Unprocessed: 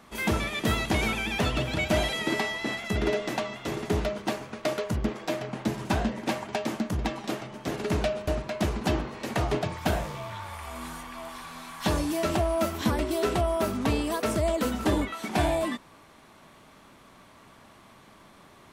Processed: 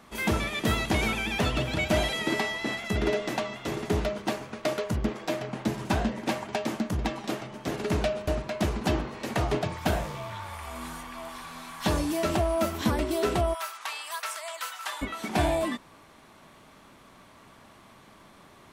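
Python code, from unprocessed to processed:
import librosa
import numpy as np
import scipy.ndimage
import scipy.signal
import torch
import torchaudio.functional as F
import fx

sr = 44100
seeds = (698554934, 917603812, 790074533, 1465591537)

y = fx.highpass(x, sr, hz=980.0, slope=24, at=(13.53, 15.01), fade=0.02)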